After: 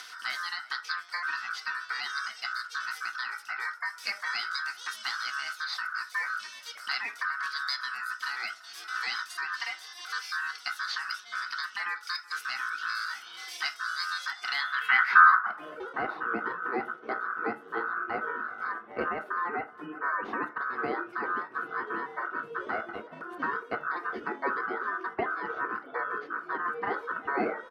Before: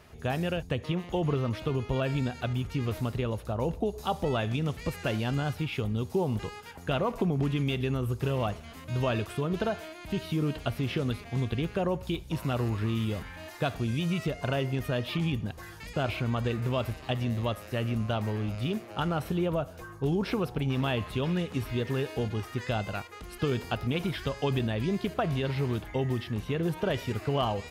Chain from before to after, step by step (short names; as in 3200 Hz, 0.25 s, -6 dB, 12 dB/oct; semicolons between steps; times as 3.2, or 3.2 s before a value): octaver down 1 oct, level -1 dB; reverb removal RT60 0.79 s; upward compressor, threshold -33 dBFS; high shelf 5300 Hz +10.5 dB; echo 0.374 s -23 dB; ring modulator 1400 Hz; band-pass sweep 5200 Hz -> 420 Hz, 14.43–15.87; reverb RT60 0.35 s, pre-delay 3 ms, DRR 5 dB; dynamic EQ 640 Hz, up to -5 dB, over -50 dBFS, Q 0.9; gain +8 dB